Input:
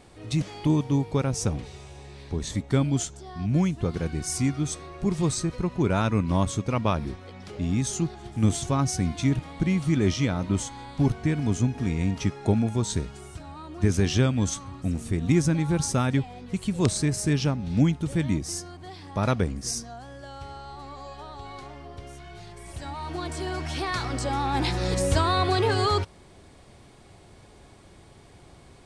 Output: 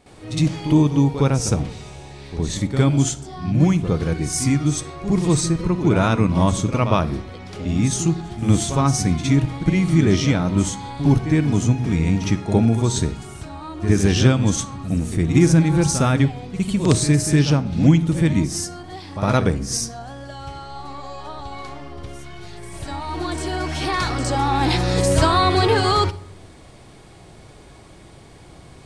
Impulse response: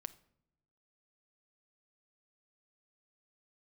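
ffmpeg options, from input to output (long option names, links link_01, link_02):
-filter_complex "[0:a]asplit=2[link_01][link_02];[1:a]atrim=start_sample=2205,adelay=61[link_03];[link_02][link_03]afir=irnorm=-1:irlink=0,volume=13.5dB[link_04];[link_01][link_04]amix=inputs=2:normalize=0,volume=-3.5dB"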